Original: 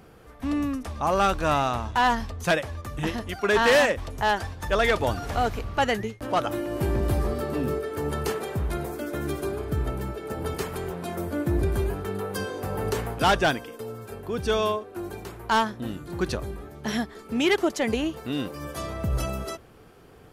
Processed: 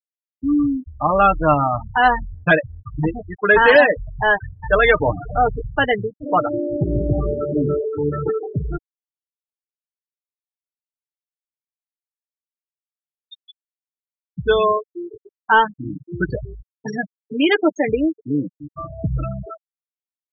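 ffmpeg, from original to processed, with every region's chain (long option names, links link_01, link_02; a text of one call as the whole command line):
ffmpeg -i in.wav -filter_complex "[0:a]asettb=1/sr,asplit=3[link_01][link_02][link_03];[link_01]atrim=end=8.774[link_04];[link_02]atrim=start=8.77:end=14.38,asetpts=PTS-STARTPTS,afade=type=in:duration=0.004:curve=qsin,afade=type=out:start_time=5.606:duration=0.004:curve=qsin,flanger=delay=2.6:depth=9.1:regen=58:speed=1:shape=triangular,asuperpass=centerf=3700:order=8:qfactor=4.4[link_05];[link_03]atrim=start=14.376[link_06];[link_04][link_05]acrossfade=duration=0.004:curve1=hsin:curve2=qsin[link_07];[link_07][link_06]acrossfade=duration=0.004:curve1=qsin:curve2=hsin,afftfilt=real='re*gte(hypot(re,im),0.112)':imag='im*gte(hypot(re,im),0.112)':win_size=1024:overlap=0.75,equalizer=frequency=1600:width=6.6:gain=6.5,aecho=1:1:6.6:0.64,volume=5.5dB" out.wav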